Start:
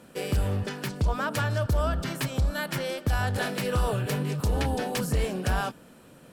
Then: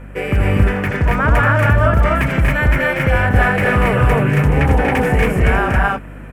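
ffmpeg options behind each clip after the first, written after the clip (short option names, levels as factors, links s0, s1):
-af "highshelf=f=3000:t=q:w=3:g=-11.5,aecho=1:1:81.63|239.1|274.1:0.398|0.631|0.891,aeval=exprs='val(0)+0.00794*(sin(2*PI*50*n/s)+sin(2*PI*2*50*n/s)/2+sin(2*PI*3*50*n/s)/3+sin(2*PI*4*50*n/s)/4+sin(2*PI*5*50*n/s)/5)':c=same,volume=2.82"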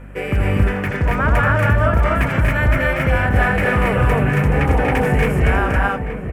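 -filter_complex "[0:a]asplit=2[s0][s1];[s1]adelay=874.6,volume=0.398,highshelf=f=4000:g=-19.7[s2];[s0][s2]amix=inputs=2:normalize=0,volume=0.75"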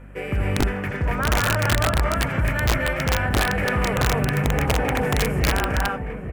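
-af "aeval=exprs='(mod(2.24*val(0)+1,2)-1)/2.24':c=same,volume=0.531"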